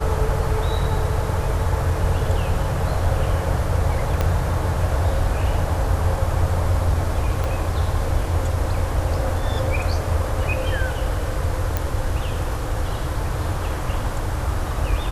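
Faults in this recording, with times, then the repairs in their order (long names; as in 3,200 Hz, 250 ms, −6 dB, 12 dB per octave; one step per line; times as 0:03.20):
0:04.21: click −8 dBFS
0:07.44: click
0:11.77: click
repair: click removal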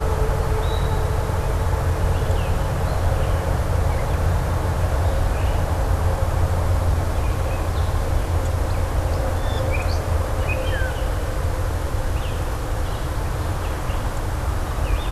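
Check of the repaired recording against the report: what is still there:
0:04.21: click
0:07.44: click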